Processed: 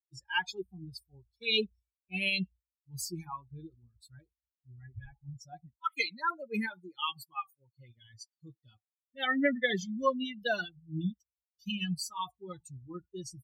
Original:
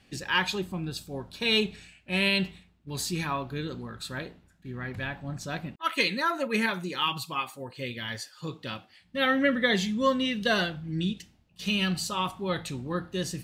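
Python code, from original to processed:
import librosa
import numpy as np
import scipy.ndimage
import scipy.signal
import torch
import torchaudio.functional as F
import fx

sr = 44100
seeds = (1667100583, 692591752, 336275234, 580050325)

y = fx.bin_expand(x, sr, power=3.0)
y = fx.wow_flutter(y, sr, seeds[0], rate_hz=2.1, depth_cents=22.0)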